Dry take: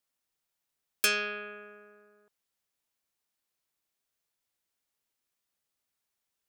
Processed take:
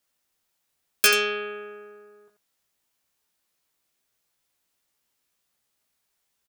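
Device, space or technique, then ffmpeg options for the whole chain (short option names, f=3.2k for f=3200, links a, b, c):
slapback doubling: -filter_complex "[0:a]asplit=3[a][b][c];[b]adelay=17,volume=-4dB[d];[c]adelay=87,volume=-9dB[e];[a][d][e]amix=inputs=3:normalize=0,volume=6.5dB"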